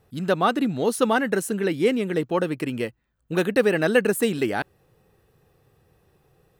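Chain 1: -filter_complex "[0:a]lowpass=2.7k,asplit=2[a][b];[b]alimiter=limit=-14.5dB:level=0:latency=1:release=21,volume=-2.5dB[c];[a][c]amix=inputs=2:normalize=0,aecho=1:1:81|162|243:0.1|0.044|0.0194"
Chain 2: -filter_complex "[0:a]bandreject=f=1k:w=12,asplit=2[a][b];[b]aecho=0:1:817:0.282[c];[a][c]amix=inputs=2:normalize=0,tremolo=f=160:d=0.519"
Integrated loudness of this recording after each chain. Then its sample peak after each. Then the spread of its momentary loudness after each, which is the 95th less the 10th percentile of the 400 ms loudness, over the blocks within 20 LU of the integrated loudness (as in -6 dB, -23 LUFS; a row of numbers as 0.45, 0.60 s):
-19.5, -26.0 LUFS; -4.0, -7.5 dBFS; 7, 13 LU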